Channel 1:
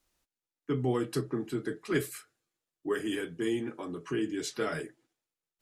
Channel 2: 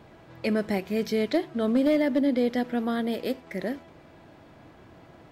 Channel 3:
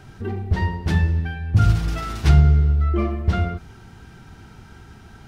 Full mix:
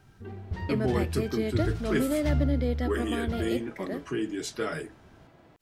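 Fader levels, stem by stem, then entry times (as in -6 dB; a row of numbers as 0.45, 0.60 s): +1.0, -5.5, -13.5 dB; 0.00, 0.25, 0.00 s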